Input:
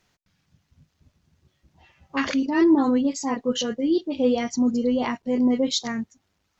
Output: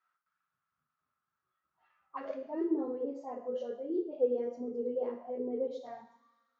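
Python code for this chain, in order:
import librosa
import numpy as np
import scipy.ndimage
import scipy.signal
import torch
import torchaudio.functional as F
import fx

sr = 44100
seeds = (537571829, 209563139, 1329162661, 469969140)

y = fx.rev_double_slope(x, sr, seeds[0], early_s=0.52, late_s=2.0, knee_db=-21, drr_db=1.0)
y = fx.auto_wah(y, sr, base_hz=440.0, top_hz=1300.0, q=9.2, full_db=-17.5, direction='down')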